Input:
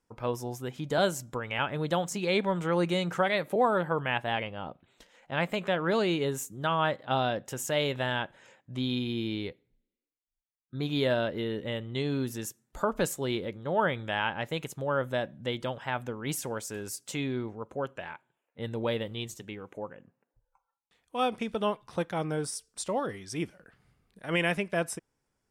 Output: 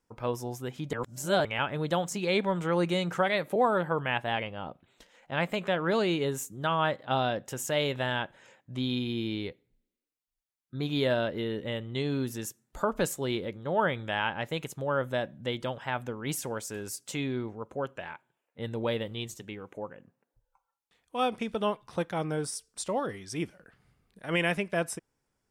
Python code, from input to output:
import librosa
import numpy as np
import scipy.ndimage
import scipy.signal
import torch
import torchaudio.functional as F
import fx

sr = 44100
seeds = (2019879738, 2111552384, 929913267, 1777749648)

y = fx.edit(x, sr, fx.reverse_span(start_s=0.93, length_s=0.52), tone=tone)